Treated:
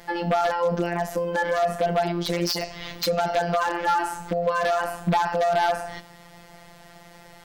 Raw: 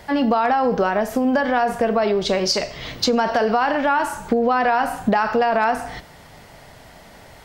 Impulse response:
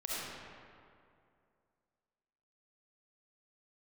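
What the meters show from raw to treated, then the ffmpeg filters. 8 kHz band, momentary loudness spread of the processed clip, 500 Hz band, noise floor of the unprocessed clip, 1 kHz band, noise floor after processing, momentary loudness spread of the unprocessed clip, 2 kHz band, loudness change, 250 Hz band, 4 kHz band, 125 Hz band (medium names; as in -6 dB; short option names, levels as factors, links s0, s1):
-4.5 dB, 6 LU, -4.0 dB, -45 dBFS, -4.5 dB, -49 dBFS, 4 LU, -5.0 dB, -4.5 dB, -9.0 dB, -5.0 dB, +3.0 dB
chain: -af "afftfilt=real='hypot(re,im)*cos(PI*b)':imag='0':win_size=1024:overlap=0.75,aeval=exprs='0.211*(abs(mod(val(0)/0.211+3,4)-2)-1)':c=same"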